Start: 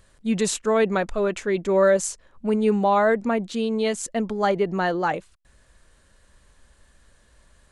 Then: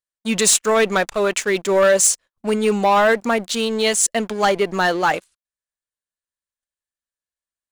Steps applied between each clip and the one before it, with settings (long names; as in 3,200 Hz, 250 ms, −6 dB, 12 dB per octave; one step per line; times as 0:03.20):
noise gate −46 dBFS, range −29 dB
spectral tilt +3 dB per octave
leveller curve on the samples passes 3
level −4 dB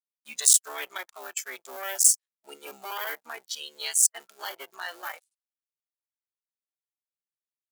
sub-harmonics by changed cycles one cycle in 3, muted
noise reduction from a noise print of the clip's start 14 dB
first difference
level −1 dB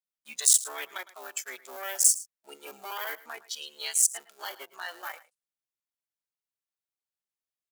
single-tap delay 109 ms −18.5 dB
level −2 dB